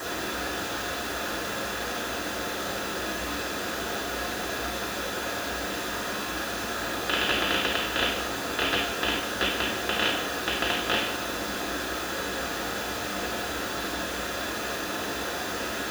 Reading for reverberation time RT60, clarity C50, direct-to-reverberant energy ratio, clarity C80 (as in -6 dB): 0.70 s, 4.0 dB, -5.5 dB, 7.0 dB